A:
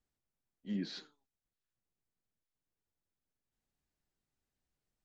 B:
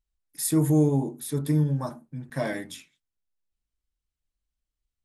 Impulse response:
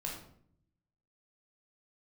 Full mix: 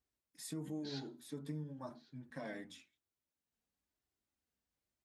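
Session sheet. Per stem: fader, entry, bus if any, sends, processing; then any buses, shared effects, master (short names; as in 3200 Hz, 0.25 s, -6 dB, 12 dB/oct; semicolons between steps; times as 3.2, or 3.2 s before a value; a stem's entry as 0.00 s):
-4.5 dB, 0.00 s, send -17 dB, echo send -20.5 dB, negative-ratio compressor -44 dBFS, ratio -0.5
-8.5 dB, 0.00 s, no send, no echo send, bell 11000 Hz -13 dB 0.7 oct; compressor 6:1, threshold -27 dBFS, peak gain reduction 10.5 dB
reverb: on, RT60 0.60 s, pre-delay 13 ms
echo: echo 1.105 s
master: flange 0.98 Hz, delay 2.6 ms, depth 1.9 ms, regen -37%; HPF 71 Hz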